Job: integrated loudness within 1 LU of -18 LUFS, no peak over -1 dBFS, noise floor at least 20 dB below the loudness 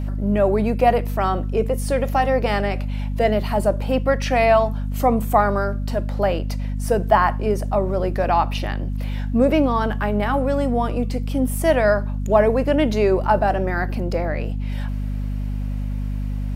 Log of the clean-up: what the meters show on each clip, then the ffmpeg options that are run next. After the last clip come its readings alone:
hum 50 Hz; harmonics up to 250 Hz; hum level -22 dBFS; loudness -21.0 LUFS; peak -2.5 dBFS; loudness target -18.0 LUFS
-> -af "bandreject=f=50:t=h:w=6,bandreject=f=100:t=h:w=6,bandreject=f=150:t=h:w=6,bandreject=f=200:t=h:w=6,bandreject=f=250:t=h:w=6"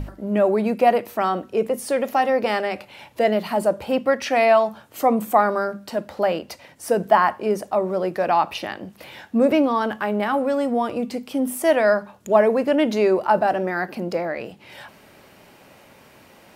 hum none; loudness -21.0 LUFS; peak -3.0 dBFS; loudness target -18.0 LUFS
-> -af "volume=3dB,alimiter=limit=-1dB:level=0:latency=1"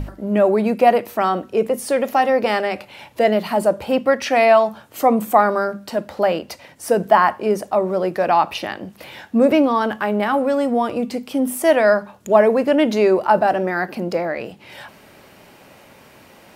loudness -18.0 LUFS; peak -1.0 dBFS; noise floor -48 dBFS

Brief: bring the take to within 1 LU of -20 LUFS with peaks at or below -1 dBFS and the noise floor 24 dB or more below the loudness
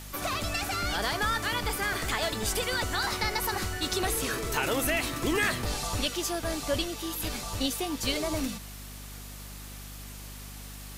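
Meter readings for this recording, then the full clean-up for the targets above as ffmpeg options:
hum 50 Hz; harmonics up to 250 Hz; hum level -41 dBFS; noise floor -43 dBFS; noise floor target -54 dBFS; loudness -29.5 LUFS; peak -13.5 dBFS; loudness target -20.0 LUFS
-> -af "bandreject=f=50:t=h:w=4,bandreject=f=100:t=h:w=4,bandreject=f=150:t=h:w=4,bandreject=f=200:t=h:w=4,bandreject=f=250:t=h:w=4"
-af "afftdn=nr=11:nf=-43"
-af "volume=9.5dB"

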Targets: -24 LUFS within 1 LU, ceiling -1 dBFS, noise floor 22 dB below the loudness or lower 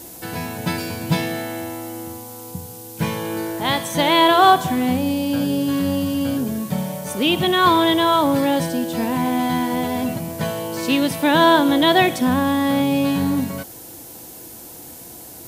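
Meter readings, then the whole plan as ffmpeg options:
noise floor -39 dBFS; noise floor target -41 dBFS; loudness -19.0 LUFS; peak -2.0 dBFS; loudness target -24.0 LUFS
-> -af "afftdn=nr=6:nf=-39"
-af "volume=-5dB"

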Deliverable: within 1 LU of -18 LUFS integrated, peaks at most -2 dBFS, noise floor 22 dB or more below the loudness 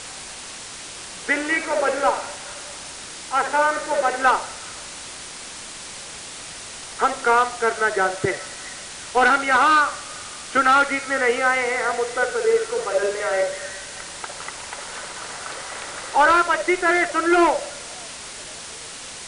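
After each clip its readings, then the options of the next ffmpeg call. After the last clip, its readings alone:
noise floor -37 dBFS; noise floor target -43 dBFS; loudness -20.5 LUFS; peak -5.5 dBFS; loudness target -18.0 LUFS
-> -af "afftdn=nr=6:nf=-37"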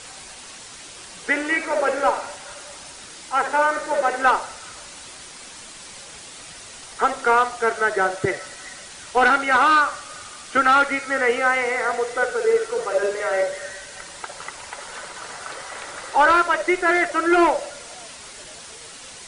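noise floor -41 dBFS; noise floor target -42 dBFS
-> -af "afftdn=nr=6:nf=-41"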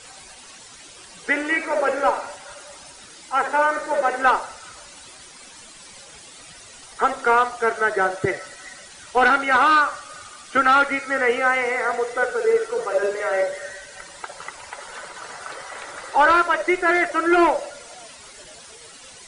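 noise floor -44 dBFS; loudness -20.0 LUFS; peak -6.0 dBFS; loudness target -18.0 LUFS
-> -af "volume=2dB"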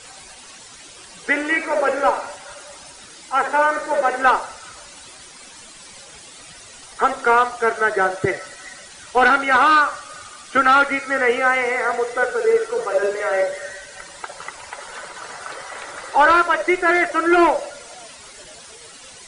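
loudness -18.0 LUFS; peak -4.0 dBFS; noise floor -42 dBFS

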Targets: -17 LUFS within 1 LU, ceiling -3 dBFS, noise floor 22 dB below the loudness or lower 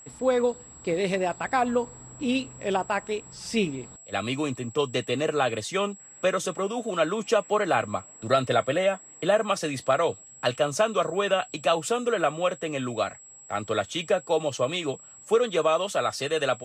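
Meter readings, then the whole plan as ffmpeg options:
steady tone 7700 Hz; tone level -46 dBFS; loudness -26.5 LUFS; peak -9.0 dBFS; loudness target -17.0 LUFS
-> -af "bandreject=f=7.7k:w=30"
-af "volume=9.5dB,alimiter=limit=-3dB:level=0:latency=1"

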